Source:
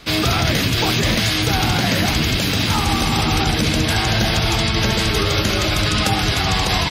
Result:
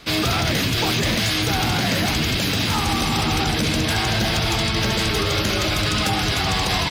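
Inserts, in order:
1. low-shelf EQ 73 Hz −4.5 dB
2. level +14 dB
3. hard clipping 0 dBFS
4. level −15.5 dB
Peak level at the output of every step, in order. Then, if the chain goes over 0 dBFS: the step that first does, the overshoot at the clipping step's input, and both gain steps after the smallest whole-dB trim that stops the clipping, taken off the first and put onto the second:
−6.0, +8.0, 0.0, −15.5 dBFS
step 2, 8.0 dB
step 2 +6 dB, step 4 −7.5 dB

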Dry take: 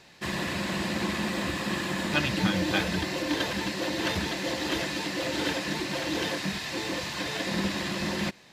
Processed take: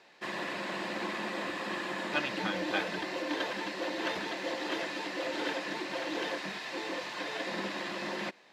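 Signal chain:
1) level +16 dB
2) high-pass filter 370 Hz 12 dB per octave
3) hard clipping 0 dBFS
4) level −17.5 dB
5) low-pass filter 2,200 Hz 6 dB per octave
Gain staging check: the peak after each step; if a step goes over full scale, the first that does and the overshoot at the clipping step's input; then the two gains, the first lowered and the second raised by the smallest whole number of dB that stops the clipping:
+4.0, +5.0, 0.0, −17.5, −18.0 dBFS
step 1, 5.0 dB
step 1 +11 dB, step 4 −12.5 dB

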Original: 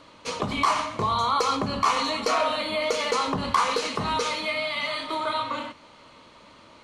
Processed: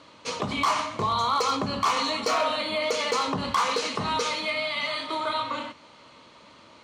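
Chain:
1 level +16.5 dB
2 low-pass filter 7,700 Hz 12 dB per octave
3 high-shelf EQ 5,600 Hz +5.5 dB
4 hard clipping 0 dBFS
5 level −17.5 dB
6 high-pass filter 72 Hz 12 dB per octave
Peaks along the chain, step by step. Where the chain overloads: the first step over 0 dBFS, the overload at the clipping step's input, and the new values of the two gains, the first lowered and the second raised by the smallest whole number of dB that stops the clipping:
+4.5, +5.0, +6.0, 0.0, −17.5, −16.0 dBFS
step 1, 6.0 dB
step 1 +10.5 dB, step 5 −11.5 dB

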